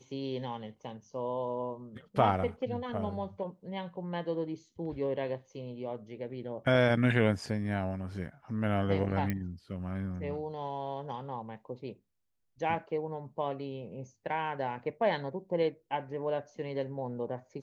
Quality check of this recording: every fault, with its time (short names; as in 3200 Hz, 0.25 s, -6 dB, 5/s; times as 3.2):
9.3 pop -19 dBFS